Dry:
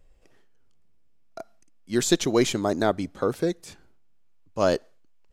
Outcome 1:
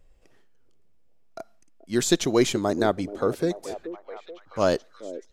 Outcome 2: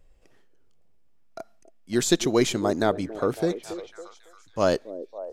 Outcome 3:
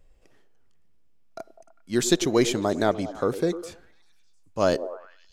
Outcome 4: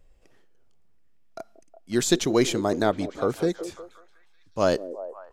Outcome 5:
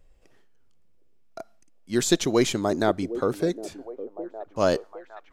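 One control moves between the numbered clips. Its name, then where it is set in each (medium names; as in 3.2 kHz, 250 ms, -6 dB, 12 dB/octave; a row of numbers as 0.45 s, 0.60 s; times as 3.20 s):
repeats whose band climbs or falls, time: 430 ms, 277 ms, 100 ms, 182 ms, 761 ms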